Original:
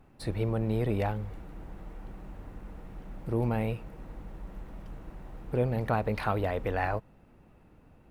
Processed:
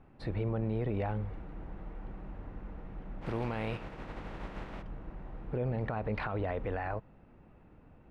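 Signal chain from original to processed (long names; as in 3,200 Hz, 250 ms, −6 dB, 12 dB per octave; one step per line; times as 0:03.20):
0:03.21–0:04.81: compressing power law on the bin magnitudes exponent 0.6
low-pass filter 2,800 Hz 12 dB per octave
brickwall limiter −25.5 dBFS, peak gain reduction 11 dB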